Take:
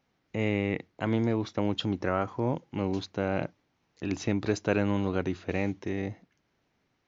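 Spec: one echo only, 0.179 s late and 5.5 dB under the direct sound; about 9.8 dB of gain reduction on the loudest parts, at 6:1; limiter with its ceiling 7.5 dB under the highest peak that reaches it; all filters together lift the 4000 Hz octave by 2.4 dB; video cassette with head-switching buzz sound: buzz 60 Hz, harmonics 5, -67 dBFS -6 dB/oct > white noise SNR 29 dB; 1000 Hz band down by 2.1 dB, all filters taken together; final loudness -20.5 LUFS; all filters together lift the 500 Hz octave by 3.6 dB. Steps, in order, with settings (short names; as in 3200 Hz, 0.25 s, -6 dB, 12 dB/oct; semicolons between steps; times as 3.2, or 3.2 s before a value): bell 500 Hz +5.5 dB; bell 1000 Hz -5.5 dB; bell 4000 Hz +3.5 dB; compressor 6:1, threshold -29 dBFS; limiter -24.5 dBFS; echo 0.179 s -5.5 dB; buzz 60 Hz, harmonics 5, -67 dBFS -6 dB/oct; white noise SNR 29 dB; gain +16 dB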